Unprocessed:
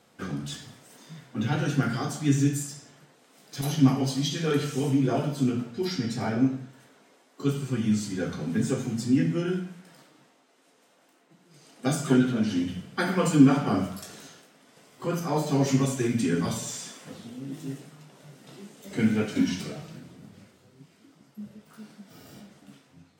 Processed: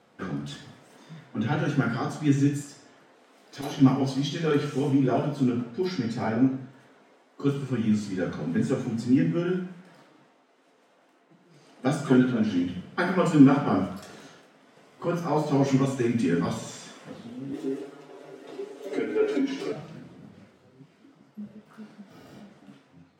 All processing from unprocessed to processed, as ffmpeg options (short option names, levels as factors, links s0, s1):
-filter_complex "[0:a]asettb=1/sr,asplit=3[s0][s1][s2];[s0]atrim=end=2.614[s3];[s1]atrim=start=2.61:end=3.8,asetpts=PTS-STARTPTS,afade=t=in:d=0.004:c=qsin,afade=t=out:st=1.186:d=0.004:c=qsin,equalizer=f=150:w=3.2:g=-14.5,acompressor=mode=upward:threshold=0.00251:ratio=2.5:attack=3.2:release=140:knee=2.83:detection=peak[s4];[s2]atrim=start=3.796[s5];[s3][s4]acrossfade=d=0.004:c1=hsin:c2=qsin[s6];[s6][s5]acrossfade=d=0.004:c1=qsin:c2=hsin,asettb=1/sr,asplit=3[s7][s8][s9];[s7]atrim=end=17.534[s10];[s8]atrim=start=17.53:end=19.72,asetpts=PTS-STARTPTS,afade=t=in:d=0.004:c=qsin,afade=t=out:st=2.186:d=0.004:c=qsin,acompressor=threshold=0.0224:ratio=2:attack=3.2:release=140:knee=1:detection=peak,highpass=f=370:t=q:w=3.1,aecho=1:1:7.1:0.92,atrim=end_sample=96579[s11];[s9]atrim=start=19.716[s12];[s10][s11]acrossfade=d=0.004:c1=hsin:c2=qsin[s13];[s13][s12]acrossfade=d=0.004:c1=qsin:c2=hsin,lowpass=f=2000:p=1,lowshelf=f=140:g=-7.5,volume=1.41"